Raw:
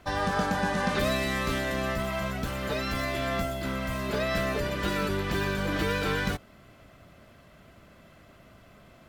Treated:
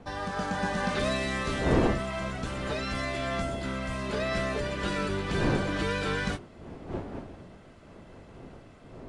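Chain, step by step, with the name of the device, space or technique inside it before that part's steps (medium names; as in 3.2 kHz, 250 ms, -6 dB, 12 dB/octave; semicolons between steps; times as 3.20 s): smartphone video outdoors (wind noise 420 Hz -34 dBFS; level rider gain up to 5 dB; trim -6.5 dB; AAC 48 kbps 22.05 kHz)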